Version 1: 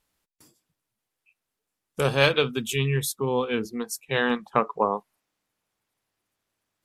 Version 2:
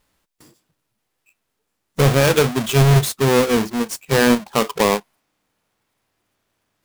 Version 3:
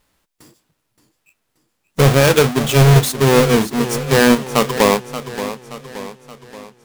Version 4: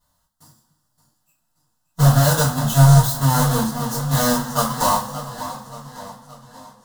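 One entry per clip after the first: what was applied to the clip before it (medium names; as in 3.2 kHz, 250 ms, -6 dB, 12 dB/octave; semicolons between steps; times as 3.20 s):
square wave that keeps the level; harmonic-percussive split percussive -5 dB; loudness maximiser +11.5 dB; trim -5 dB
modulated delay 576 ms, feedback 50%, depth 105 cents, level -12 dB; trim +3 dB
self-modulated delay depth 0.15 ms; static phaser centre 980 Hz, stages 4; two-slope reverb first 0.32 s, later 2.5 s, from -21 dB, DRR -9 dB; trim -9.5 dB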